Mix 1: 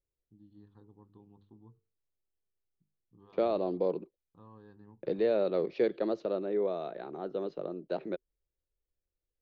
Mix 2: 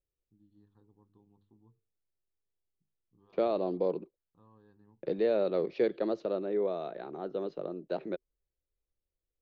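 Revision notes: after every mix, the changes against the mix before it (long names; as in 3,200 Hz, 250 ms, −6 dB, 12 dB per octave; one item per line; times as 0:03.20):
first voice −7.0 dB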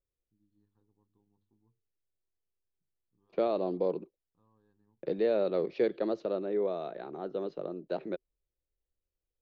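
first voice −9.0 dB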